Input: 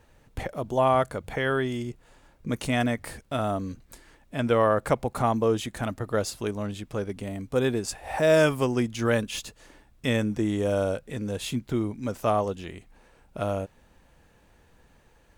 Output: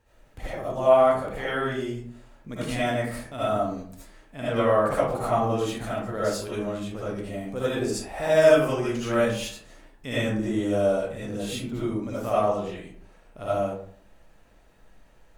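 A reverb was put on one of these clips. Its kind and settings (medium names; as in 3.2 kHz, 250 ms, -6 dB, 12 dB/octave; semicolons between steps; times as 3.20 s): algorithmic reverb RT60 0.58 s, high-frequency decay 0.5×, pre-delay 35 ms, DRR -10 dB; trim -9.5 dB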